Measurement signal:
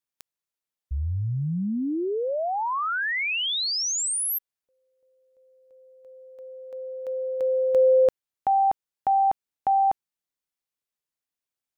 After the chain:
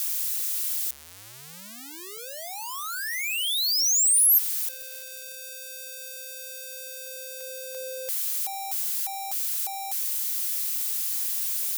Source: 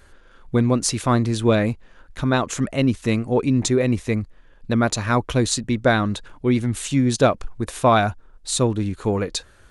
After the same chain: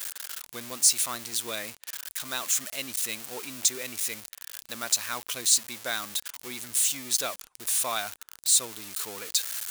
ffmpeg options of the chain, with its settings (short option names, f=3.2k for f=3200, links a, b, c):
-af "aeval=exprs='val(0)+0.5*0.0596*sgn(val(0))':c=same,aderivative,volume=1.5dB"